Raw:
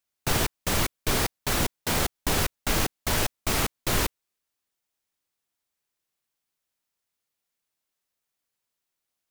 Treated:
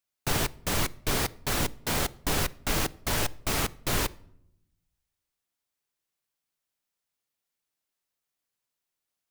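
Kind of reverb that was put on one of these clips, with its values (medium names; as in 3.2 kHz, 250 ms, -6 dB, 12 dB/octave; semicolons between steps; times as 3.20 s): simulated room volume 1900 m³, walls furnished, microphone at 0.32 m; trim -2.5 dB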